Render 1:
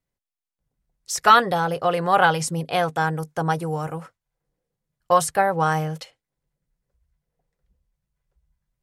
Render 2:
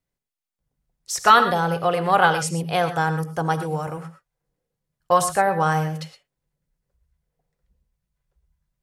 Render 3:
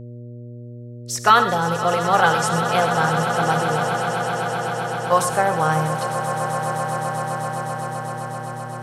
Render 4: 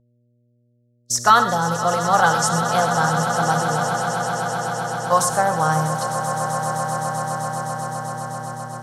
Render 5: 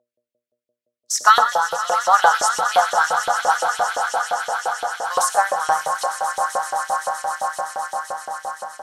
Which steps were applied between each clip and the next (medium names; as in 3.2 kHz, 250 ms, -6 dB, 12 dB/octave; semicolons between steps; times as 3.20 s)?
gated-style reverb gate 140 ms rising, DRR 9.5 dB
echo with a slow build-up 129 ms, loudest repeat 8, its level -13 dB; mains buzz 120 Hz, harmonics 5, -36 dBFS -7 dB/octave
gate -31 dBFS, range -25 dB; fifteen-band graphic EQ 100 Hz -5 dB, 400 Hz -8 dB, 2.5 kHz -12 dB, 6.3 kHz +6 dB; trim +2 dB
LFO high-pass saw up 5.8 Hz 530–3100 Hz; trim -1 dB